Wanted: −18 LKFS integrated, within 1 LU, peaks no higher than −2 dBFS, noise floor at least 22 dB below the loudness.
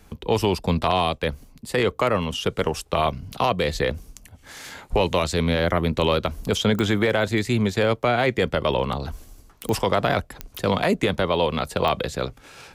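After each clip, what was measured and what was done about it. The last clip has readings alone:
number of clicks 4; integrated loudness −23.0 LKFS; sample peak −8.5 dBFS; target loudness −18.0 LKFS
→ click removal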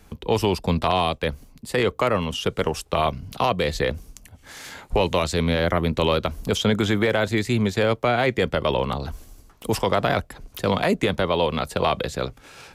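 number of clicks 0; integrated loudness −23.0 LKFS; sample peak −8.5 dBFS; target loudness −18.0 LKFS
→ level +5 dB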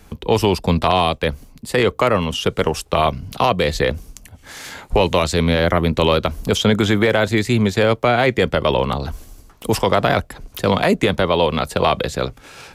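integrated loudness −18.0 LKFS; sample peak −3.5 dBFS; background noise floor −47 dBFS

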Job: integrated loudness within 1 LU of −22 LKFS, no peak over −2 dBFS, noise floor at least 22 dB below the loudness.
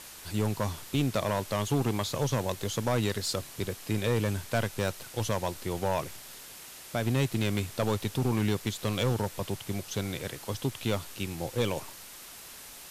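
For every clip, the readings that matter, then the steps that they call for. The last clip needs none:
share of clipped samples 1.1%; peaks flattened at −20.0 dBFS; background noise floor −47 dBFS; target noise floor −53 dBFS; integrated loudness −31.0 LKFS; sample peak −20.0 dBFS; target loudness −22.0 LKFS
→ clipped peaks rebuilt −20 dBFS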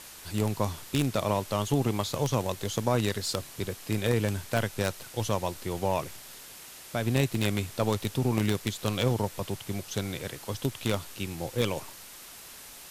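share of clipped samples 0.0%; background noise floor −47 dBFS; target noise floor −52 dBFS
→ noise reduction from a noise print 6 dB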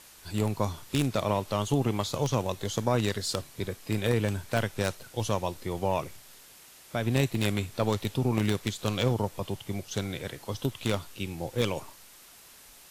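background noise floor −53 dBFS; integrated loudness −30.0 LKFS; sample peak −11.0 dBFS; target loudness −22.0 LKFS
→ level +8 dB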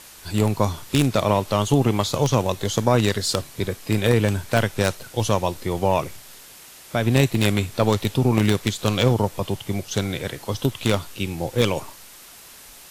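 integrated loudness −22.0 LKFS; sample peak −3.0 dBFS; background noise floor −45 dBFS

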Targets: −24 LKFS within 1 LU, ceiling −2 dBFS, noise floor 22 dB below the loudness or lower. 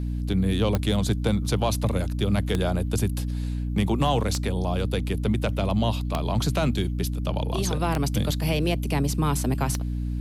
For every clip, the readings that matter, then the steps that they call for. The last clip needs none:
number of clicks 6; mains hum 60 Hz; hum harmonics up to 300 Hz; level of the hum −25 dBFS; integrated loudness −25.5 LKFS; sample peak −8.5 dBFS; target loudness −24.0 LKFS
→ click removal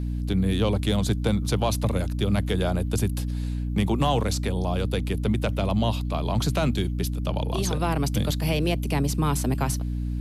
number of clicks 0; mains hum 60 Hz; hum harmonics up to 300 Hz; level of the hum −25 dBFS
→ mains-hum notches 60/120/180/240/300 Hz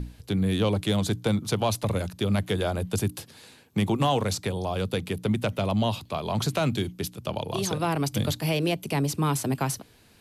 mains hum none found; integrated loudness −27.5 LKFS; sample peak −13.0 dBFS; target loudness −24.0 LKFS
→ level +3.5 dB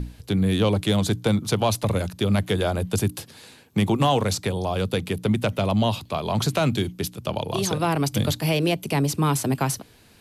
integrated loudness −24.0 LKFS; sample peak −9.5 dBFS; background noise floor −52 dBFS

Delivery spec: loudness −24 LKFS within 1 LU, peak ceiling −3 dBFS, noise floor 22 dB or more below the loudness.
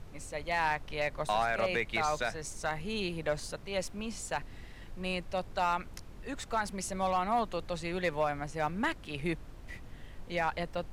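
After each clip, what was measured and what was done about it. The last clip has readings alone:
share of clipped samples 0.2%; peaks flattened at −21.0 dBFS; background noise floor −49 dBFS; target noise floor −56 dBFS; integrated loudness −34.0 LKFS; sample peak −21.0 dBFS; target loudness −24.0 LKFS
→ clipped peaks rebuilt −21 dBFS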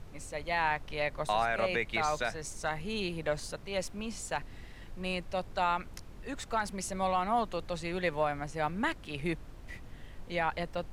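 share of clipped samples 0.0%; background noise floor −49 dBFS; target noise floor −56 dBFS
→ noise reduction from a noise print 7 dB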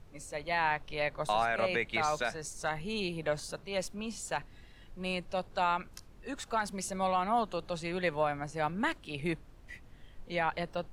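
background noise floor −55 dBFS; target noise floor −56 dBFS
→ noise reduction from a noise print 6 dB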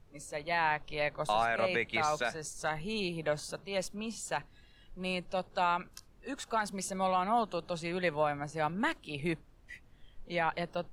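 background noise floor −60 dBFS; integrated loudness −33.5 LKFS; sample peak −17.5 dBFS; target loudness −24.0 LKFS
→ level +9.5 dB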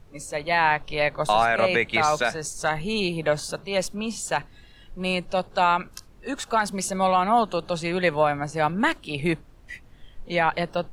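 integrated loudness −24.0 LKFS; sample peak −8.0 dBFS; background noise floor −51 dBFS

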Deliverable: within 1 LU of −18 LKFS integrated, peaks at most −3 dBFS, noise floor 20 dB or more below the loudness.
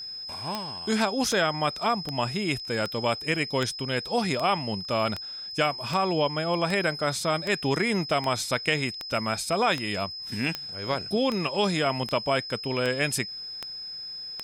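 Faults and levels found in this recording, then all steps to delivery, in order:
number of clicks 19; interfering tone 5,100 Hz; level of the tone −35 dBFS; integrated loudness −27.0 LKFS; sample peak −9.0 dBFS; target loudness −18.0 LKFS
→ click removal
notch filter 5,100 Hz, Q 30
level +9 dB
brickwall limiter −3 dBFS

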